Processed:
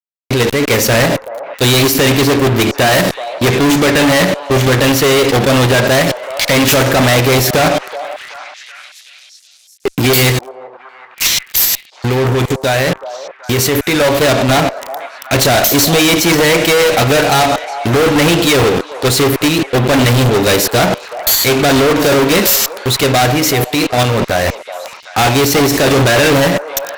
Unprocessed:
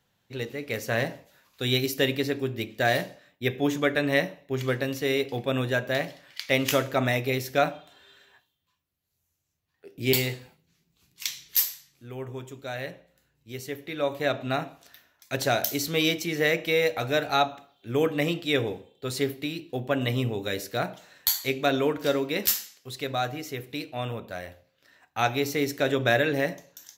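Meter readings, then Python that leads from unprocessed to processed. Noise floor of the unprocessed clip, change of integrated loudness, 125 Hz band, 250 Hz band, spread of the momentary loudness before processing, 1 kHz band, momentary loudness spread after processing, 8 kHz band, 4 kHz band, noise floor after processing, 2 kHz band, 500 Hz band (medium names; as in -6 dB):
-76 dBFS, +15.5 dB, +18.0 dB, +17.0 dB, 13 LU, +16.5 dB, 9 LU, +20.0 dB, +17.0 dB, -41 dBFS, +15.0 dB, +15.0 dB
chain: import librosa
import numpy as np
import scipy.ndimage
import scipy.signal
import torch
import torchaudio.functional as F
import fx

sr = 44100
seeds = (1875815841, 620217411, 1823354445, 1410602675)

y = fx.level_steps(x, sr, step_db=15)
y = fx.fuzz(y, sr, gain_db=49.0, gate_db=-52.0)
y = fx.echo_stepped(y, sr, ms=378, hz=700.0, octaves=0.7, feedback_pct=70, wet_db=-10.0)
y = y * 10.0 ** (4.5 / 20.0)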